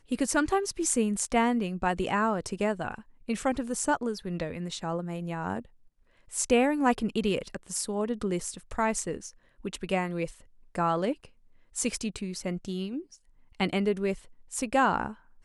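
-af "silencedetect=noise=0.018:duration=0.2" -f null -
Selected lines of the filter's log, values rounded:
silence_start: 2.98
silence_end: 3.29 | silence_duration: 0.30
silence_start: 5.60
silence_end: 6.33 | silence_duration: 0.73
silence_start: 9.29
silence_end: 9.65 | silence_duration: 0.36
silence_start: 10.30
silence_end: 10.75 | silence_duration: 0.46
silence_start: 11.25
silence_end: 11.76 | silence_duration: 0.51
silence_start: 13.00
silence_end: 13.60 | silence_duration: 0.59
silence_start: 14.14
silence_end: 14.53 | silence_duration: 0.38
silence_start: 15.12
silence_end: 15.44 | silence_duration: 0.33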